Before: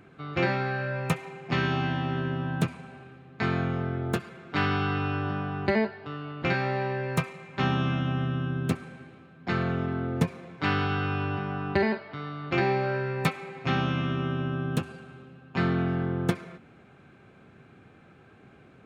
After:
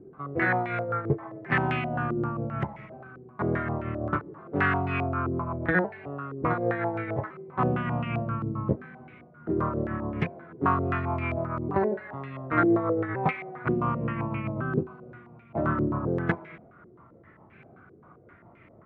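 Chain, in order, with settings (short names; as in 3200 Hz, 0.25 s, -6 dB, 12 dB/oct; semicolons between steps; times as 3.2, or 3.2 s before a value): repeated pitch sweeps -3.5 st, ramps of 1.461 s; stepped low-pass 7.6 Hz 400–2300 Hz; gain -1 dB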